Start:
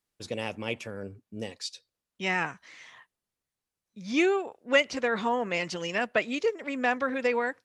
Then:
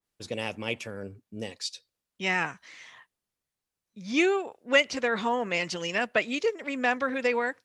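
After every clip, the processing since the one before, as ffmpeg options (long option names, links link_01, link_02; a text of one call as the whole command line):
ffmpeg -i in.wav -af "adynamicequalizer=threshold=0.00794:dfrequency=1900:dqfactor=0.7:tfrequency=1900:tqfactor=0.7:attack=5:release=100:ratio=0.375:range=1.5:mode=boostabove:tftype=highshelf" out.wav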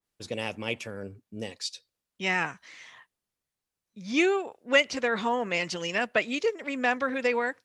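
ffmpeg -i in.wav -af anull out.wav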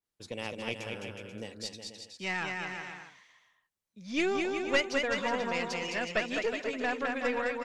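ffmpeg -i in.wav -af "aecho=1:1:210|367.5|485.6|574.2|640.7:0.631|0.398|0.251|0.158|0.1,aeval=exprs='0.473*(cos(1*acos(clip(val(0)/0.473,-1,1)))-cos(1*PI/2))+0.211*(cos(2*acos(clip(val(0)/0.473,-1,1)))-cos(2*PI/2))':channel_layout=same,volume=-6dB" out.wav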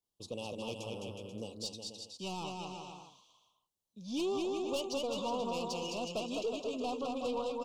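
ffmpeg -i in.wav -af "asoftclip=type=tanh:threshold=-29dB,asuperstop=centerf=1800:order=8:qfactor=1.1" out.wav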